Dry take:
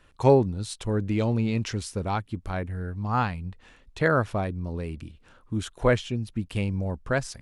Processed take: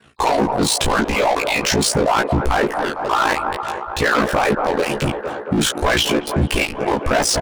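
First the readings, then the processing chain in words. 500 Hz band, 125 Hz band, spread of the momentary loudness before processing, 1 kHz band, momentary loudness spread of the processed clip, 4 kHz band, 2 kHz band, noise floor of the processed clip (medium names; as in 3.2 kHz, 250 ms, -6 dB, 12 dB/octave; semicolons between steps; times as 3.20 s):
+7.5 dB, +1.5 dB, 11 LU, +13.0 dB, 6 LU, +19.0 dB, +13.0 dB, -31 dBFS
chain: harmonic-percussive separation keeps percussive; dynamic bell 860 Hz, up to +4 dB, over -41 dBFS, Q 1; in parallel at 0 dB: level held to a coarse grid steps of 20 dB; on the sum: waveshaping leveller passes 3; reverse; compression 6:1, threshold -25 dBFS, peak gain reduction 16.5 dB; reverse; chorus 2.2 Hz, delay 17 ms, depth 5.8 ms; saturation -29.5 dBFS, distortion -11 dB; ring modulator 28 Hz; doubling 14 ms -3.5 dB; feedback echo behind a band-pass 226 ms, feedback 71%, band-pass 680 Hz, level -12 dB; loudness maximiser +35 dB; trim -8 dB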